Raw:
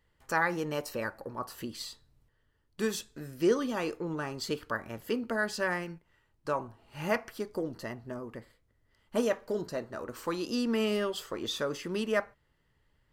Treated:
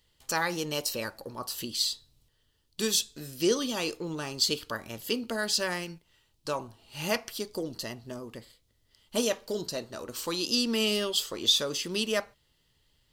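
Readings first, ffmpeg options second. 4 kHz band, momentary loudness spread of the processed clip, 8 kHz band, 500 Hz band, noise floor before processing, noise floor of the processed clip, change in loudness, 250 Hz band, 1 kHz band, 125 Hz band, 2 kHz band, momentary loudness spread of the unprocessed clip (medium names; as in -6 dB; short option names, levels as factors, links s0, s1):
+12.5 dB, 13 LU, +12.0 dB, -0.5 dB, -73 dBFS, -71 dBFS, +3.5 dB, 0.0 dB, -1.5 dB, 0.0 dB, -0.5 dB, 12 LU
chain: -af "highshelf=f=2500:t=q:w=1.5:g=11"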